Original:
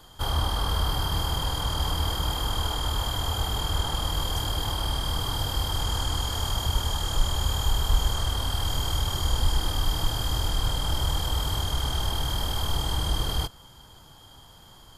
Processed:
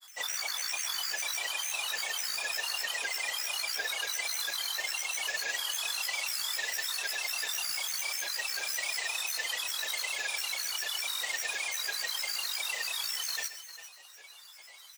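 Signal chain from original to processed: high-pass 1.2 kHz 12 dB/octave; tilt EQ +2.5 dB/octave; upward compressor, threshold -41 dBFS; granulator, pitch spread up and down by 12 st; multi-tap echo 129/400/406 ms -13/-15.5/-16.5 dB; trim -4 dB

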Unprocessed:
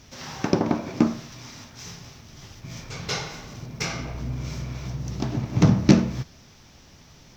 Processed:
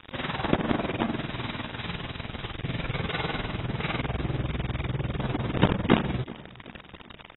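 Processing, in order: 0.84–2.52 s: hum notches 50/100/150/200/250/300/350/400 Hz; in parallel at -2.5 dB: compression 12:1, threshold -36 dBFS, peak gain reduction 27 dB; on the sum: companded quantiser 2-bit; tremolo 20 Hz, depth 88%; wavefolder -8 dBFS; feedback delay 381 ms, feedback 48%, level -20 dB; AAC 16 kbps 22.05 kHz

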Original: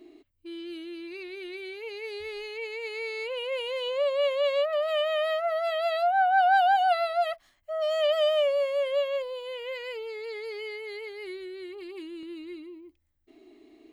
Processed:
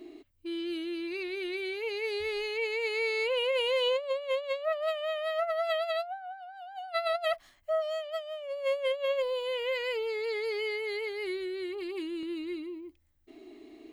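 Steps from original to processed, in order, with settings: compressor with a negative ratio -30 dBFS, ratio -0.5

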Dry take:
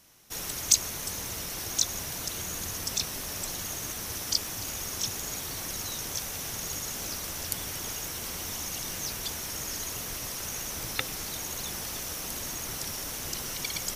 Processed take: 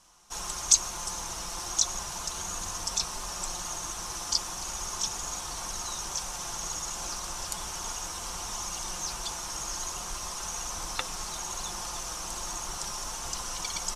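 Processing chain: graphic EQ 125/250/500/1000/2000/4000/8000 Hz -11/-8/-8/+7/-10/-4/+6 dB; flange 0.37 Hz, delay 3.9 ms, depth 2.4 ms, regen -66%; distance through air 82 m; comb 5.7 ms, depth 32%; trim +9 dB

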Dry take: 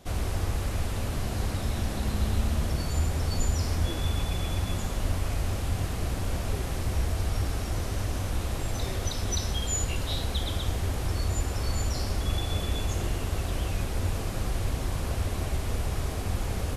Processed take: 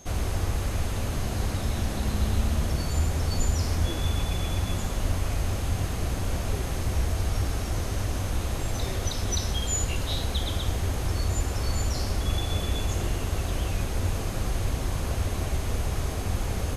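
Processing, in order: whistle 6.4 kHz -52 dBFS; trim +1.5 dB

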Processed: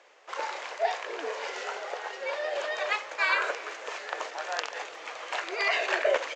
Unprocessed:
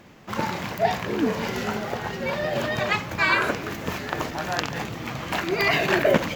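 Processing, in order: elliptic band-pass 480–7400 Hz, stop band 40 dB; Chebyshev shaper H 2 -32 dB, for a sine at -4.5 dBFS; speakerphone echo 360 ms, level -20 dB; trim -4.5 dB

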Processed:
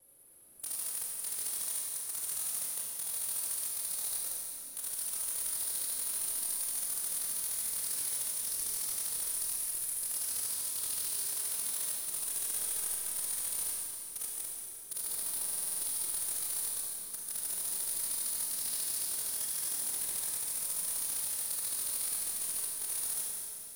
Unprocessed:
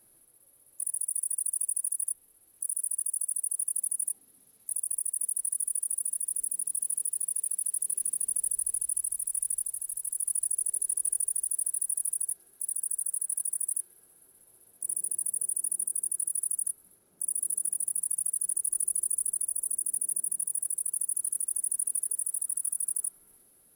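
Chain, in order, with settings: slices played last to first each 149 ms, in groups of 4; wavefolder -28 dBFS; Schroeder reverb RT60 2.6 s, combs from 30 ms, DRR -3.5 dB; buffer glitch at 15.44 s, samples 2048, times 7; trim -2 dB

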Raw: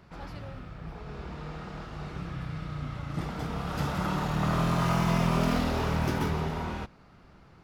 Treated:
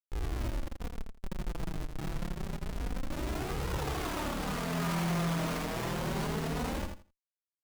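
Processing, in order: 0.88–3.12 s: high-pass 240 Hz 12 dB/octave; Schmitt trigger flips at -35.5 dBFS; flange 0.27 Hz, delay 2 ms, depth 4.7 ms, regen +4%; feedback delay 83 ms, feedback 18%, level -6 dB

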